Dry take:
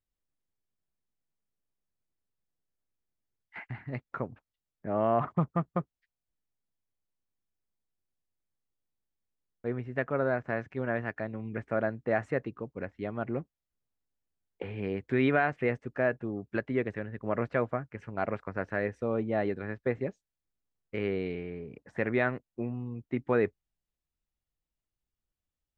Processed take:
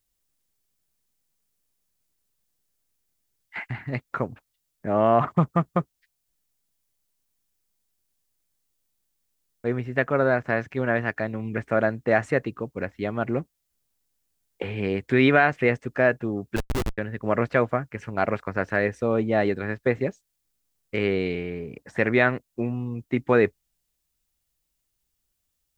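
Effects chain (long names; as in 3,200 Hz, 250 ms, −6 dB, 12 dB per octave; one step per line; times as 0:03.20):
high-shelf EQ 3,700 Hz +12 dB
0:16.56–0:16.98: comparator with hysteresis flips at −26 dBFS
level +7 dB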